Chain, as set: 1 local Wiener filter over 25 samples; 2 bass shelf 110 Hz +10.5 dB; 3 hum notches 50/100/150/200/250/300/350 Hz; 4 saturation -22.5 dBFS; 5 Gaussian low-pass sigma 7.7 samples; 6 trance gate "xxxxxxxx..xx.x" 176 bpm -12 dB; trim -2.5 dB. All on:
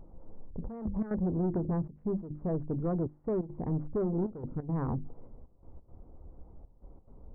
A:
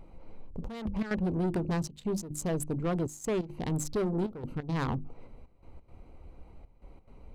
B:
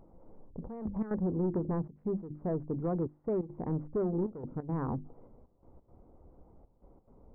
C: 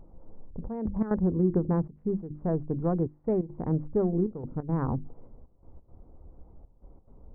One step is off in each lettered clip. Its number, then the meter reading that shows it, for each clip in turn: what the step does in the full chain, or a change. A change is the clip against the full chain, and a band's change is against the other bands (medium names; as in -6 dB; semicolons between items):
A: 5, 1 kHz band +4.0 dB; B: 2, 125 Hz band -2.5 dB; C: 4, distortion -9 dB